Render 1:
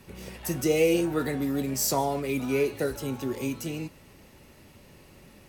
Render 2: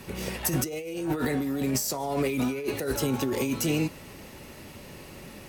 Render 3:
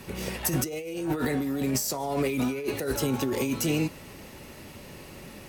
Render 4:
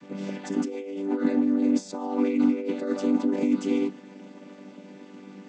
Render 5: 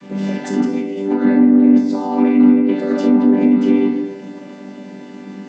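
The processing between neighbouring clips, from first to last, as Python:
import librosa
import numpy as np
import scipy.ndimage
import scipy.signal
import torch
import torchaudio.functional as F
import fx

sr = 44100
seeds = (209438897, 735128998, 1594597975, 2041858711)

y1 = fx.low_shelf(x, sr, hz=120.0, db=-4.5)
y1 = fx.over_compress(y1, sr, threshold_db=-33.0, ratio=-1.0)
y1 = y1 * 10.0 ** (4.5 / 20.0)
y2 = y1
y3 = fx.chord_vocoder(y2, sr, chord='major triad', root=55)
y3 = fx.attack_slew(y3, sr, db_per_s=350.0)
y3 = y3 * 10.0 ** (4.5 / 20.0)
y4 = fx.room_shoebox(y3, sr, seeds[0], volume_m3=330.0, walls='mixed', distance_m=1.2)
y4 = fx.env_lowpass_down(y4, sr, base_hz=2300.0, full_db=-15.5)
y4 = y4 * 10.0 ** (7.0 / 20.0)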